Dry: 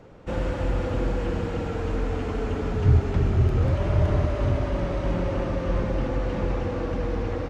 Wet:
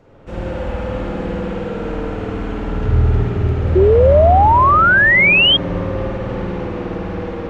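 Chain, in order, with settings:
spring reverb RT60 2.5 s, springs 51 ms, chirp 20 ms, DRR −6 dB
sound drawn into the spectrogram rise, 0:03.75–0:05.57, 360–3,300 Hz −9 dBFS
level −2 dB

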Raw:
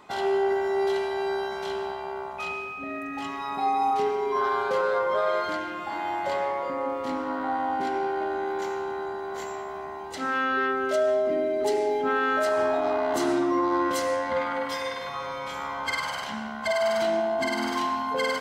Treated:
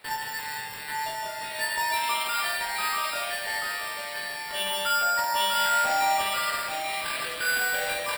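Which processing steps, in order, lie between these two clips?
hum removal 54.04 Hz, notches 35
change of speed 2.25×
sample-rate reduction 6,300 Hz, jitter 0%
on a send: multi-tap delay 47/164/835 ms −4.5/−4/−4 dB
on the sum: level −4 dB

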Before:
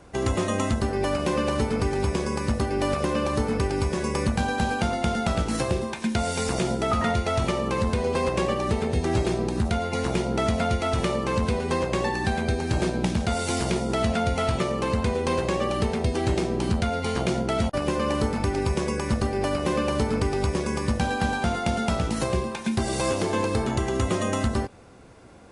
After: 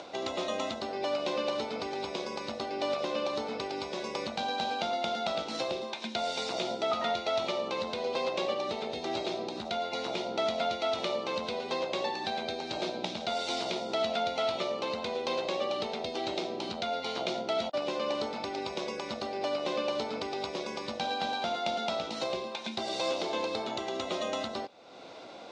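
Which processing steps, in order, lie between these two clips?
upward compression, threshold −27 dBFS
loudspeaker in its box 410–5,700 Hz, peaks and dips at 420 Hz −4 dB, 640 Hz +4 dB, 1,100 Hz −4 dB, 1,700 Hz −9 dB, 3,800 Hz +9 dB
level −4 dB

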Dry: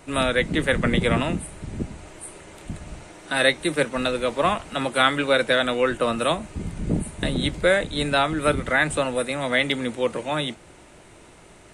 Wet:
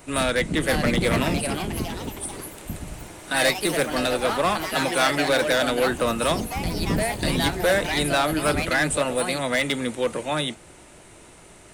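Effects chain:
high-shelf EQ 8,700 Hz +11 dB
hard clipping −16.5 dBFS, distortion −12 dB
delay with pitch and tempo change per echo 557 ms, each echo +3 semitones, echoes 3, each echo −6 dB

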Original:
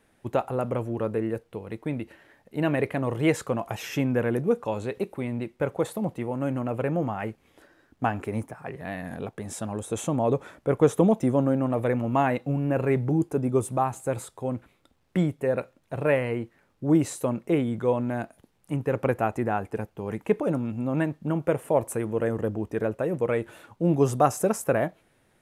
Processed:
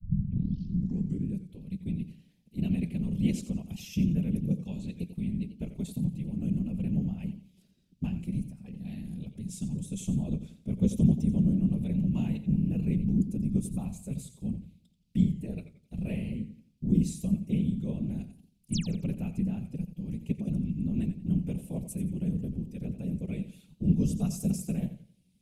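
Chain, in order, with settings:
turntable start at the beginning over 1.43 s
random phases in short frames
sound drawn into the spectrogram fall, 0:18.72–0:18.93, 230–11,000 Hz −30 dBFS
drawn EQ curve 120 Hz 0 dB, 190 Hz +10 dB, 330 Hz −12 dB, 1,100 Hz −28 dB, 1,700 Hz −28 dB, 2,500 Hz −7 dB, 4,800 Hz 0 dB, 7,300 Hz −3 dB
feedback echo with a swinging delay time 88 ms, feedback 31%, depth 108 cents, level −11.5 dB
level −4 dB

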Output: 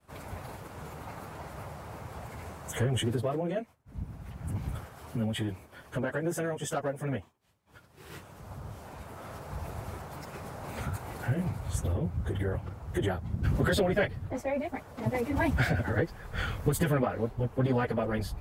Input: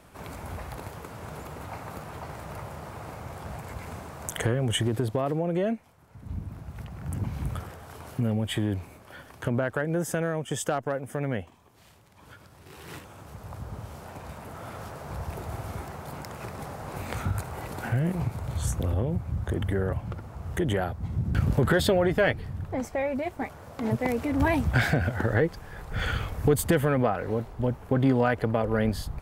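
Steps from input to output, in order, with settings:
downward expander −47 dBFS
time stretch by phase vocoder 0.63×

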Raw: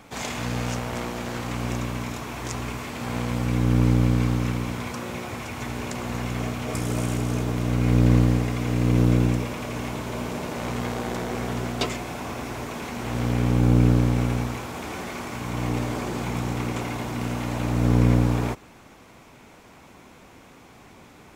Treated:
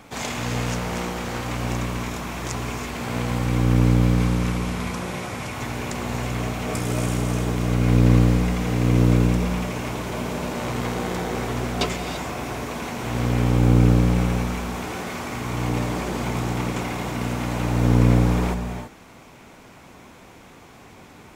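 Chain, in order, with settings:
0:04.18–0:05.53: variable-slope delta modulation 64 kbit/s
reverb whose tail is shaped and stops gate 360 ms rising, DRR 6.5 dB
level +2 dB

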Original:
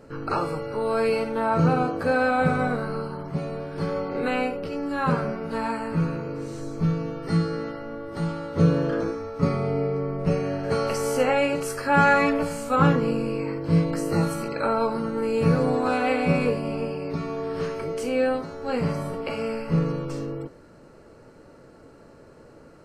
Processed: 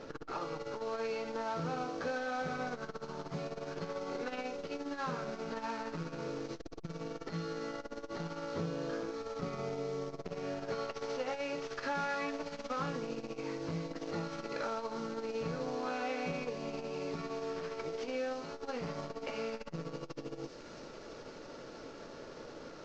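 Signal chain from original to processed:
variable-slope delta modulation 32 kbit/s
parametric band 77 Hz −11 dB 2.6 octaves
downward compressor 4 to 1, threshold −41 dBFS, peak gain reduction 20.5 dB
delay with a high-pass on its return 334 ms, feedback 80%, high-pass 5,000 Hz, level −4 dB
saturating transformer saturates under 280 Hz
level +4 dB

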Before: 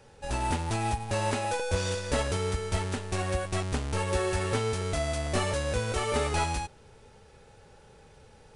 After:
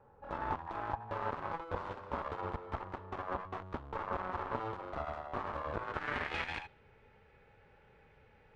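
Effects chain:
dynamic equaliser 3,600 Hz, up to +7 dB, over −53 dBFS, Q 1.5
brickwall limiter −21 dBFS, peak gain reduction 6 dB
harmonic generator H 3 −7 dB, 7 −32 dB, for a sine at −21 dBFS
low-pass filter sweep 1,100 Hz → 2,200 Hz, 0:05.73–0:06.33
level −3.5 dB

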